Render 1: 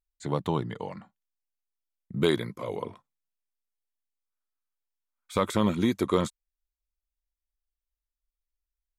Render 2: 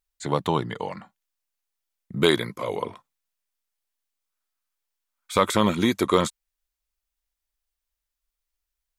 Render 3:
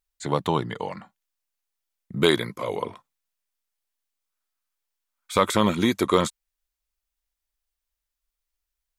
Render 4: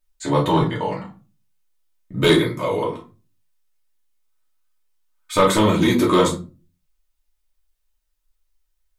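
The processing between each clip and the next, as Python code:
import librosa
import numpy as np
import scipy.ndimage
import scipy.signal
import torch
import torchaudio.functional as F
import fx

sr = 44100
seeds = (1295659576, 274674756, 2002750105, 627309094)

y1 = fx.low_shelf(x, sr, hz=470.0, db=-7.5)
y1 = y1 * 10.0 ** (8.5 / 20.0)
y2 = y1
y3 = fx.room_shoebox(y2, sr, seeds[0], volume_m3=140.0, walls='furnished', distance_m=2.7)
y3 = 10.0 ** (-6.0 / 20.0) * np.tanh(y3 / 10.0 ** (-6.0 / 20.0))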